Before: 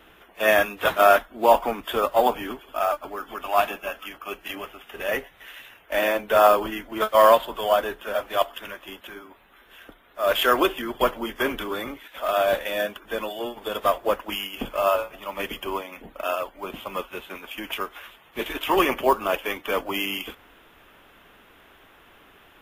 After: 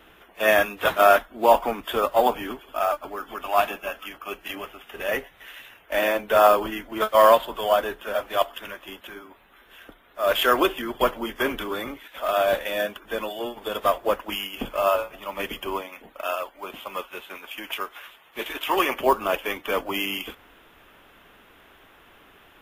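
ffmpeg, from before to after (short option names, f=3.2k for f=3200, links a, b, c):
-filter_complex "[0:a]asettb=1/sr,asplit=3[a][b][c];[a]atrim=end=15.884[d];[b]atrim=start=15.88:end=18.99,asetpts=PTS-STARTPTS,afade=t=in:d=0.004:c=qsin,afade=t=out:st=3.106:d=0.004:c=qsin,lowshelf=f=290:g=-11[e];[c]atrim=start=18.986[f];[d][e]acrossfade=d=0.004:c1=hsin:c2=qsin[g];[g][f]acrossfade=d=0.004:c1=qsin:c2=hsin"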